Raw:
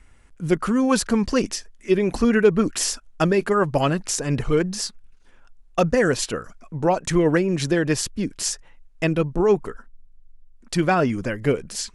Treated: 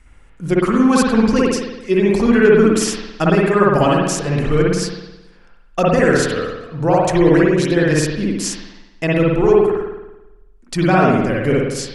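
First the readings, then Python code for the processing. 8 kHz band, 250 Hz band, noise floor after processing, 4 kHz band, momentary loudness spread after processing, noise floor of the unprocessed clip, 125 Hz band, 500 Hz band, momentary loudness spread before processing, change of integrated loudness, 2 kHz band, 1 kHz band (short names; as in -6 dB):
+1.0 dB, +7.0 dB, -47 dBFS, +2.5 dB, 12 LU, -51 dBFS, +6.5 dB, +6.5 dB, 9 LU, +6.5 dB, +6.5 dB, +6.5 dB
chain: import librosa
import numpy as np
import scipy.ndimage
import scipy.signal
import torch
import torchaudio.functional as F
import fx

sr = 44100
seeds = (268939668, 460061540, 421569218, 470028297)

y = fx.rev_spring(x, sr, rt60_s=1.0, pass_ms=(54,), chirp_ms=45, drr_db=-4.0)
y = F.gain(torch.from_numpy(y), 1.0).numpy()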